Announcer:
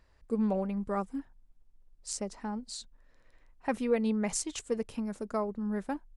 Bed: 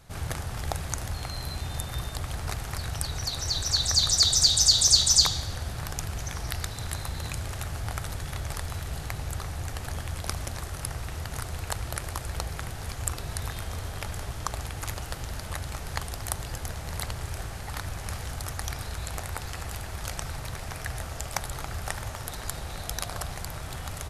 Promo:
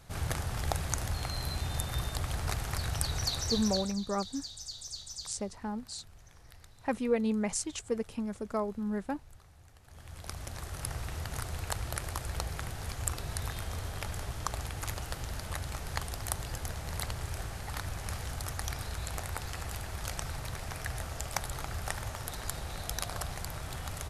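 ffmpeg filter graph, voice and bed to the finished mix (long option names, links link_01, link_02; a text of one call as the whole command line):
ffmpeg -i stem1.wav -i stem2.wav -filter_complex "[0:a]adelay=3200,volume=-0.5dB[link_01];[1:a]volume=19.5dB,afade=type=out:start_time=3.29:duration=0.67:silence=0.0749894,afade=type=in:start_time=9.86:duration=1.08:silence=0.0944061[link_02];[link_01][link_02]amix=inputs=2:normalize=0" out.wav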